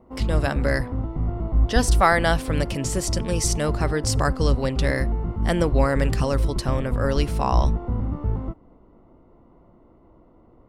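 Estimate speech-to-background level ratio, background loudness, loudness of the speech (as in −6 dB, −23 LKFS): 1.5 dB, −26.5 LKFS, −25.0 LKFS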